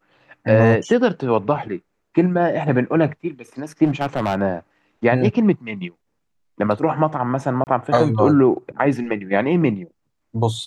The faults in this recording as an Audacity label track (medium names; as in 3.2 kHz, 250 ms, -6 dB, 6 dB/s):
3.840000	4.420000	clipped -15 dBFS
7.640000	7.670000	dropout 29 ms